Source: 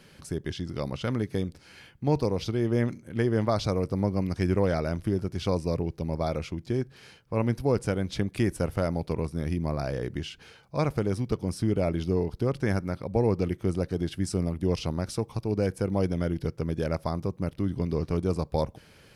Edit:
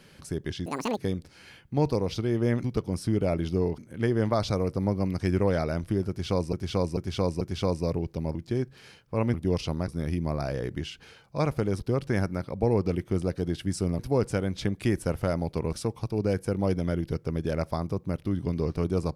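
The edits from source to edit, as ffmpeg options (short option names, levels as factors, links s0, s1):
-filter_complex "[0:a]asplit=14[s0][s1][s2][s3][s4][s5][s6][s7][s8][s9][s10][s11][s12][s13];[s0]atrim=end=0.664[s14];[s1]atrim=start=0.66:end=1.27,asetpts=PTS-STARTPTS,asetrate=86877,aresample=44100,atrim=end_sample=13655,asetpts=PTS-STARTPTS[s15];[s2]atrim=start=1.266:end=2.942[s16];[s3]atrim=start=11.188:end=12.332[s17];[s4]atrim=start=2.938:end=5.692[s18];[s5]atrim=start=5.248:end=5.692[s19];[s6]atrim=start=5.248:end=5.692[s20];[s7]atrim=start=5.248:end=6.192[s21];[s8]atrim=start=6.538:end=7.532[s22];[s9]atrim=start=14.518:end=15.062[s23];[s10]atrim=start=9.268:end=11.192[s24];[s11]atrim=start=12.328:end=14.522[s25];[s12]atrim=start=7.528:end=9.272[s26];[s13]atrim=start=15.058[s27];[s14][s15]acrossfade=d=0.004:c1=hsin:c2=hsin[s28];[s28][s16]acrossfade=d=0.004:c1=hsin:c2=hsin[s29];[s29][s17]acrossfade=d=0.004:c1=hsin:c2=hsin[s30];[s30][s18]acrossfade=d=0.004:c1=hsin:c2=hsin[s31];[s31][s19]acrossfade=d=0.004:c1=hsin:c2=hsin[s32];[s32][s20]acrossfade=d=0.004:c1=hsin:c2=hsin[s33];[s33][s21]acrossfade=d=0.004:c1=hsin:c2=hsin[s34];[s34][s22]acrossfade=d=0.004:c1=hsin:c2=hsin[s35];[s35][s23]acrossfade=d=0.004:c1=hsin:c2=hsin[s36];[s36][s24]acrossfade=d=0.004:c1=hsin:c2=hsin[s37];[s37][s25]acrossfade=d=0.004:c1=hsin:c2=hsin[s38];[s38][s26]acrossfade=d=0.004:c1=hsin:c2=hsin[s39];[s39][s27]acrossfade=d=0.004:c1=hsin:c2=hsin"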